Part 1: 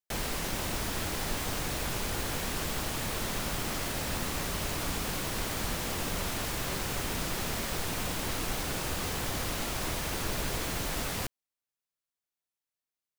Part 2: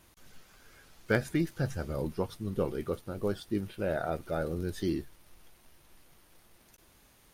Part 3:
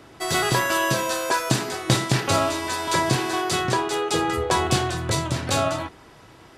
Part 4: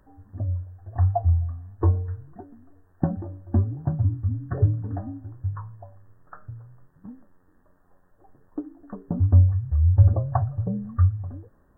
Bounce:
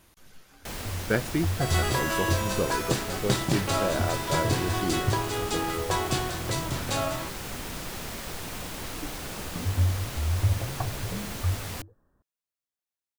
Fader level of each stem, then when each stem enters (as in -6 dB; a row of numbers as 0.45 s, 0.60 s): -3.0 dB, +2.0 dB, -6.5 dB, -8.5 dB; 0.55 s, 0.00 s, 1.40 s, 0.45 s